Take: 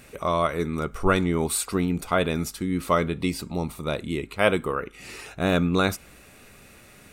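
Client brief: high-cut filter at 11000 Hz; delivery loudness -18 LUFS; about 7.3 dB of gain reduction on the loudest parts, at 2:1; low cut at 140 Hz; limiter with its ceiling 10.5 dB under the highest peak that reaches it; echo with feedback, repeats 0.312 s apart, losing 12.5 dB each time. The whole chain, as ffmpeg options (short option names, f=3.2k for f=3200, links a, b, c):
-af "highpass=140,lowpass=11k,acompressor=threshold=-28dB:ratio=2,alimiter=limit=-21.5dB:level=0:latency=1,aecho=1:1:312|624|936:0.237|0.0569|0.0137,volume=16dB"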